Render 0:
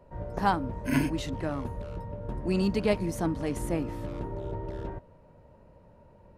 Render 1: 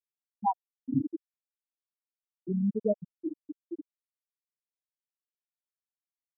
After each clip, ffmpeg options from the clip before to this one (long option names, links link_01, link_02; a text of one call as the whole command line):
ffmpeg -i in.wav -af "afftfilt=real='re*gte(hypot(re,im),0.398)':imag='im*gte(hypot(re,im),0.398)':win_size=1024:overlap=0.75" out.wav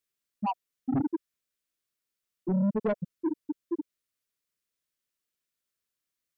ffmpeg -i in.wav -filter_complex "[0:a]equalizer=frequency=830:width=4:gain=-14.5,asplit=2[link_01][link_02];[link_02]alimiter=level_in=4dB:limit=-24dB:level=0:latency=1:release=54,volume=-4dB,volume=0dB[link_03];[link_01][link_03]amix=inputs=2:normalize=0,asoftclip=type=tanh:threshold=-26dB,volume=3.5dB" out.wav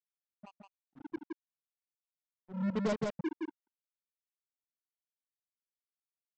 ffmpeg -i in.wav -af "tremolo=f=0.67:d=0.88,aresample=16000,acrusher=bits=4:mix=0:aa=0.5,aresample=44100,aecho=1:1:167:0.668,volume=-5dB" out.wav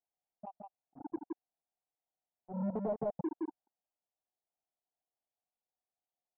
ffmpeg -i in.wav -af "acompressor=threshold=-34dB:ratio=4,lowpass=frequency=740:width_type=q:width=5.6,alimiter=level_in=2.5dB:limit=-24dB:level=0:latency=1:release=129,volume=-2.5dB" out.wav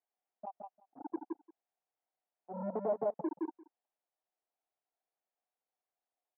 ffmpeg -i in.wav -af "highpass=330,lowpass=2000,aecho=1:1:179:0.0944,volume=3.5dB" out.wav